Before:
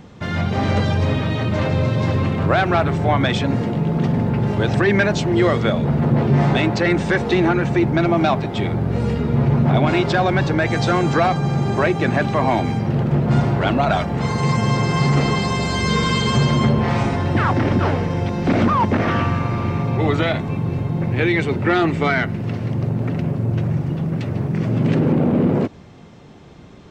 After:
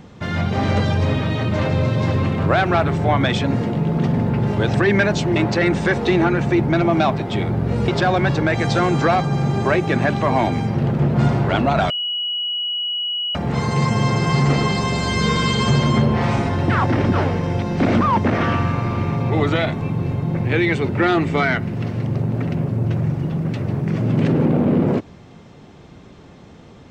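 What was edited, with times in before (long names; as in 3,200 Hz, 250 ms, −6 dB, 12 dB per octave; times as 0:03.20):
0:05.36–0:06.60: remove
0:09.12–0:10.00: remove
0:14.02: insert tone 2,920 Hz −20.5 dBFS 1.45 s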